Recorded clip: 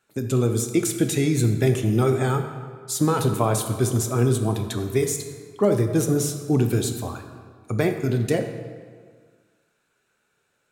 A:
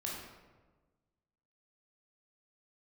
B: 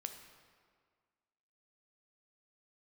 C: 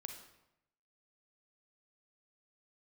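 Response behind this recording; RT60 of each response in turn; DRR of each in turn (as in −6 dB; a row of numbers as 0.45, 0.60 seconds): B; 1.3, 1.8, 0.85 seconds; −4.0, 6.0, 4.5 decibels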